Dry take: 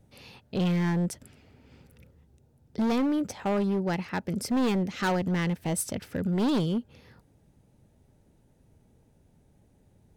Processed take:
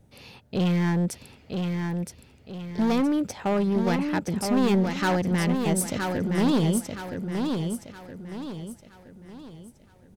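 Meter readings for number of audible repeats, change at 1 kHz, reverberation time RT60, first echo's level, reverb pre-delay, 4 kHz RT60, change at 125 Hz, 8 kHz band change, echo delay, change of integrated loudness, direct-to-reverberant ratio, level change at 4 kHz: 4, +4.0 dB, no reverb audible, −5.0 dB, no reverb audible, no reverb audible, +4.0 dB, +4.0 dB, 969 ms, +2.5 dB, no reverb audible, +4.0 dB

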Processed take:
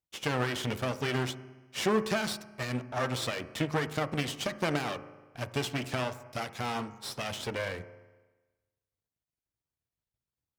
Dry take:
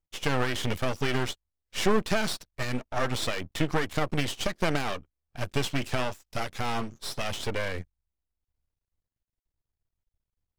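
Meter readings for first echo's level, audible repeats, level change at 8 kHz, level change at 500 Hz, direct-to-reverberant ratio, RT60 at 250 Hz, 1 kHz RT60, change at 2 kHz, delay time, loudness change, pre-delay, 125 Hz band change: no echo audible, no echo audible, −3.0 dB, −2.5 dB, 12.0 dB, 1.2 s, 1.2 s, −3.0 dB, no echo audible, −2.5 dB, 8 ms, −2.5 dB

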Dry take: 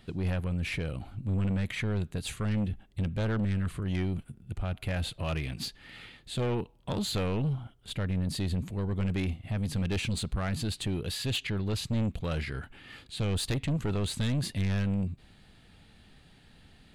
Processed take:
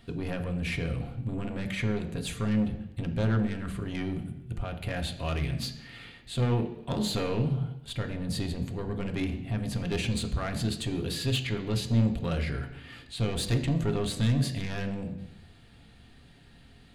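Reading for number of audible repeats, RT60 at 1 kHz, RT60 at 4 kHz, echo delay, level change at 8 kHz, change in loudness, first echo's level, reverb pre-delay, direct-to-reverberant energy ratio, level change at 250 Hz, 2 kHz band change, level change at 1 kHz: no echo audible, 0.85 s, 0.90 s, no echo audible, +0.5 dB, +1.0 dB, no echo audible, 3 ms, 4.0 dB, +2.0 dB, +1.0 dB, +2.0 dB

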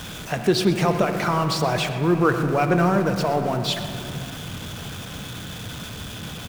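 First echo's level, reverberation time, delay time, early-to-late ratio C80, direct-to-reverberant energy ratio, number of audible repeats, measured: −15.0 dB, 2.9 s, 122 ms, 7.0 dB, 6.0 dB, 1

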